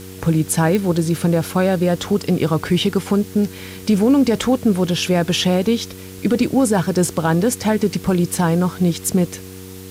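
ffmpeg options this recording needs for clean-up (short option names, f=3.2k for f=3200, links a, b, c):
-af "adeclick=t=4,bandreject=f=93.8:t=h:w=4,bandreject=f=187.6:t=h:w=4,bandreject=f=281.4:t=h:w=4,bandreject=f=375.2:t=h:w=4,bandreject=f=469:t=h:w=4,afwtdn=0.0089"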